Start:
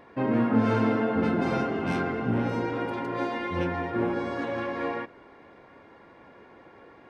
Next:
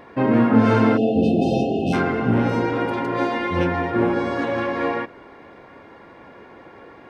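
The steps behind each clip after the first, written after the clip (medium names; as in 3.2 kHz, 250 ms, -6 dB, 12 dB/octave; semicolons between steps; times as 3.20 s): spectral selection erased 0.97–1.93 s, 820–2500 Hz; trim +7.5 dB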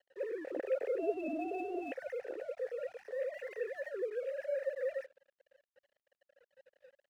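formants replaced by sine waves; vowel filter e; crossover distortion -54 dBFS; trim -7.5 dB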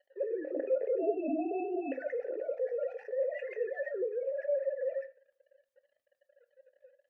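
spectral contrast enhancement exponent 1.6; gain riding 2 s; on a send at -7 dB: reverberation RT60 0.50 s, pre-delay 3 ms; on the sum: trim +4 dB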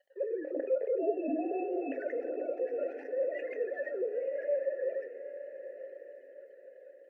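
echo that smears into a reverb 943 ms, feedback 42%, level -11 dB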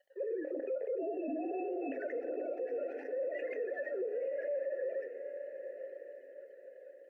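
peak limiter -30 dBFS, peak gain reduction 11 dB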